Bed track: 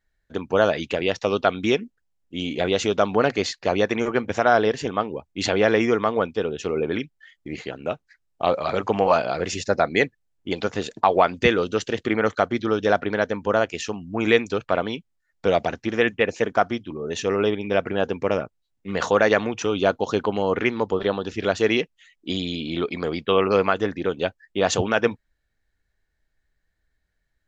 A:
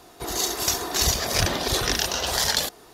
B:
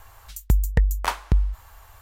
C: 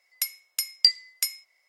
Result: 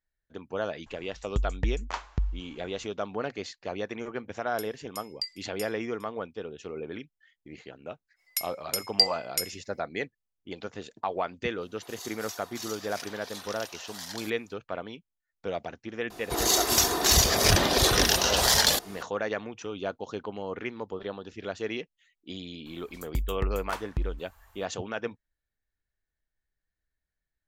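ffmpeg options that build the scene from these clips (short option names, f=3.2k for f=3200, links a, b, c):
-filter_complex "[2:a]asplit=2[a][b];[3:a]asplit=2[c][d];[1:a]asplit=2[e][f];[0:a]volume=-13dB[g];[a]aresample=16000,aresample=44100[h];[c]aecho=1:1:407:0.1[i];[e]highpass=740[j];[f]aeval=exprs='0.473*sin(PI/2*1.58*val(0)/0.473)':c=same[k];[h]atrim=end=2.01,asetpts=PTS-STARTPTS,volume=-9dB,afade=t=in:d=0.004:c=hsin,afade=t=out:st=2.006:d=0.004:c=hsin,adelay=860[l];[i]atrim=end=1.68,asetpts=PTS-STARTPTS,volume=-15dB,afade=t=in:d=0.004:c=hsin,afade=t=out:st=1.676:d=0.004:c=hsin,adelay=192717S[m];[d]atrim=end=1.68,asetpts=PTS-STARTPTS,volume=-2.5dB,afade=t=in:d=0.05,afade=t=out:st=1.63:d=0.05,adelay=8150[n];[j]atrim=end=2.93,asetpts=PTS-STARTPTS,volume=-17dB,afade=t=in:d=0.004:c=hsin,afade=t=out:st=2.926:d=0.004:c=hsin,adelay=11610[o];[k]atrim=end=2.93,asetpts=PTS-STARTPTS,volume=-5.5dB,afade=t=in:d=0.004:c=hsin,afade=t=out:st=2.926:d=0.004:c=hsin,adelay=16100[p];[b]atrim=end=2.01,asetpts=PTS-STARTPTS,volume=-10.5dB,afade=t=in:d=0.02,afade=t=out:st=1.99:d=0.02,adelay=22650[q];[g][l][m][n][o][p][q]amix=inputs=7:normalize=0"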